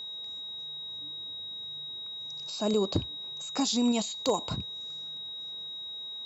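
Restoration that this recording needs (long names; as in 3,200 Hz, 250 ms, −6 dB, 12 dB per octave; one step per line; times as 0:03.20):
clipped peaks rebuilt −17 dBFS
notch filter 3,800 Hz, Q 30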